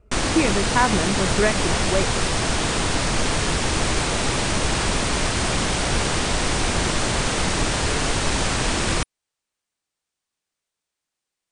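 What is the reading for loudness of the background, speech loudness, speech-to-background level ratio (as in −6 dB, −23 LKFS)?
−22.0 LKFS, −24.0 LKFS, −2.0 dB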